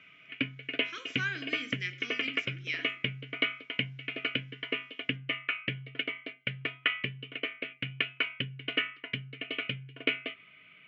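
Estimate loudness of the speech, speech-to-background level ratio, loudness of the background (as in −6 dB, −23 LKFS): −38.0 LKFS, −4.0 dB, −34.0 LKFS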